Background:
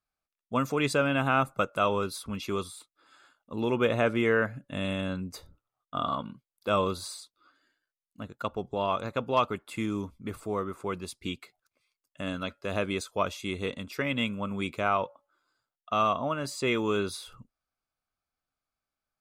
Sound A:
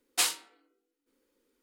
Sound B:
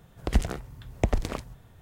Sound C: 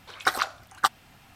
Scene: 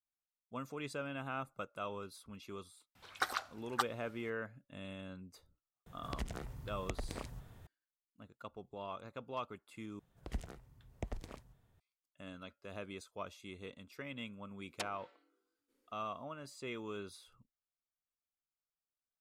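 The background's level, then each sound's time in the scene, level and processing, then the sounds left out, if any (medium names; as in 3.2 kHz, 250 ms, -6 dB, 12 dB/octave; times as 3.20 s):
background -16 dB
2.95 s: add C -11.5 dB
5.86 s: add B -3 dB + compression 3:1, threshold -37 dBFS
9.99 s: replace with B -17.5 dB
14.62 s: add A -5 dB + low-pass that closes with the level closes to 350 Hz, closed at -23.5 dBFS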